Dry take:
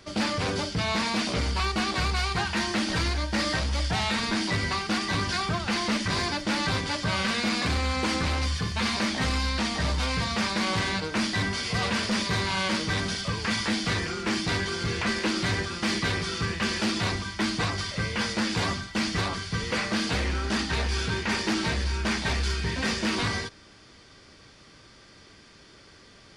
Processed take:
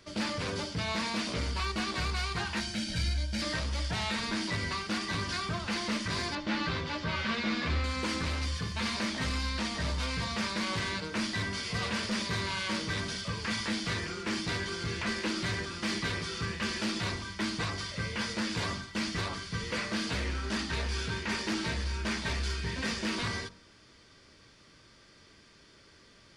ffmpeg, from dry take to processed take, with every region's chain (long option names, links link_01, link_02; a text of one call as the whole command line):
ffmpeg -i in.wav -filter_complex "[0:a]asettb=1/sr,asplit=3[link_01][link_02][link_03];[link_01]atrim=end=2.604[link_04];[link_02]atrim=start=2.6:end=3.42,asetpts=PTS-STARTPTS,afade=type=in:duration=0.004:curve=qsin,afade=type=out:start_time=0.816:duration=0.004:curve=qsin,equalizer=frequency=990:width=0.91:gain=-14.5,aecho=1:1:1.3:0.63,atrim=end_sample=36162[link_05];[link_03]atrim=start=3.416[link_06];[link_04][link_05]acrossfade=duration=0.004:curve1=hsin:curve2=qsin[link_07];[link_07][link_06]acrossfade=duration=0.004:curve1=qsin:curve2=hsin,asettb=1/sr,asplit=3[link_08][link_09][link_10];[link_08]atrim=end=6.354[link_11];[link_09]atrim=start=6.35:end=7.84,asetpts=PTS-STARTPTS,afade=type=in:duration=0.004:curve=qsin,afade=type=out:start_time=1.486:duration=0.004:curve=qsin,lowpass=4000,asplit=2[link_12][link_13];[link_13]adelay=13,volume=-5dB[link_14];[link_12][link_14]amix=inputs=2:normalize=0,atrim=end_sample=65709[link_15];[link_10]atrim=start=7.836[link_16];[link_11][link_15]acrossfade=duration=0.004:curve1=hsin:curve2=qsin[link_17];[link_17][link_16]acrossfade=duration=0.004:curve1=qsin:curve2=hsin,bandreject=frequency=770:width=12,bandreject=frequency=47.56:width_type=h:width=4,bandreject=frequency=95.12:width_type=h:width=4,bandreject=frequency=142.68:width_type=h:width=4,bandreject=frequency=190.24:width_type=h:width=4,bandreject=frequency=237.8:width_type=h:width=4,bandreject=frequency=285.36:width_type=h:width=4,bandreject=frequency=332.92:width_type=h:width=4,bandreject=frequency=380.48:width_type=h:width=4,bandreject=frequency=428.04:width_type=h:width=4,bandreject=frequency=475.6:width_type=h:width=4,bandreject=frequency=523.16:width_type=h:width=4,bandreject=frequency=570.72:width_type=h:width=4,bandreject=frequency=618.28:width_type=h:width=4,bandreject=frequency=665.84:width_type=h:width=4,bandreject=frequency=713.4:width_type=h:width=4,bandreject=frequency=760.96:width_type=h:width=4,bandreject=frequency=808.52:width_type=h:width=4,bandreject=frequency=856.08:width_type=h:width=4,bandreject=frequency=903.64:width_type=h:width=4,bandreject=frequency=951.2:width_type=h:width=4,bandreject=frequency=998.76:width_type=h:width=4,bandreject=frequency=1046.32:width_type=h:width=4,bandreject=frequency=1093.88:width_type=h:width=4,bandreject=frequency=1141.44:width_type=h:width=4,bandreject=frequency=1189:width_type=h:width=4,bandreject=frequency=1236.56:width_type=h:width=4,bandreject=frequency=1284.12:width_type=h:width=4,bandreject=frequency=1331.68:width_type=h:width=4,bandreject=frequency=1379.24:width_type=h:width=4,bandreject=frequency=1426.8:width_type=h:width=4,bandreject=frequency=1474.36:width_type=h:width=4,volume=-5.5dB" out.wav